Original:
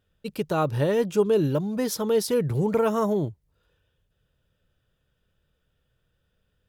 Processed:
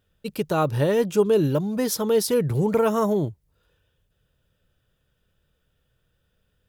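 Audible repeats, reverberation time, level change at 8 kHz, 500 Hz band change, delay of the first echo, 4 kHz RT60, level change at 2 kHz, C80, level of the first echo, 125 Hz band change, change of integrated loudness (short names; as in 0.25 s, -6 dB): none, none, +4.0 dB, +2.0 dB, none, none, +2.0 dB, none, none, +2.0 dB, +2.0 dB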